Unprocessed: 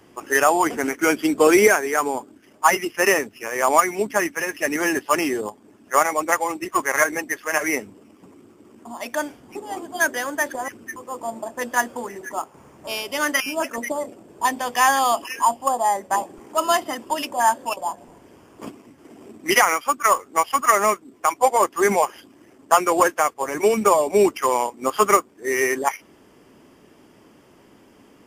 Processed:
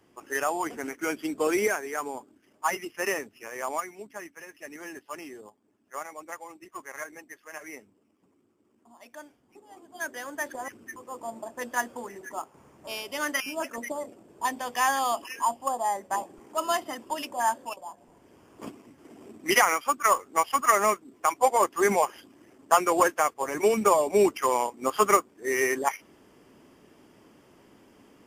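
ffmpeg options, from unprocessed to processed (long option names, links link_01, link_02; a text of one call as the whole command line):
ffmpeg -i in.wav -af "volume=11.5dB,afade=type=out:start_time=3.48:duration=0.48:silence=0.375837,afade=type=in:start_time=9.77:duration=0.87:silence=0.251189,afade=type=out:start_time=17.57:duration=0.29:silence=0.421697,afade=type=in:start_time=17.86:duration=0.8:silence=0.298538" out.wav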